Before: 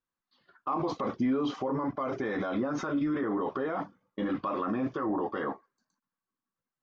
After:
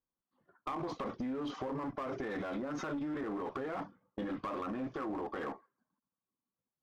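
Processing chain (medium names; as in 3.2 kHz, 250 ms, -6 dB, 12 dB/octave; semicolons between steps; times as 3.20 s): level-controlled noise filter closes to 830 Hz, open at -28 dBFS; compression 6:1, threshold -34 dBFS, peak gain reduction 9.5 dB; one-sided clip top -36 dBFS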